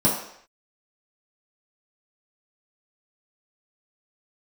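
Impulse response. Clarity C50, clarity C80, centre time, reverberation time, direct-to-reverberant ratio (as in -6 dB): 4.5 dB, 7.5 dB, 39 ms, no single decay rate, -7.0 dB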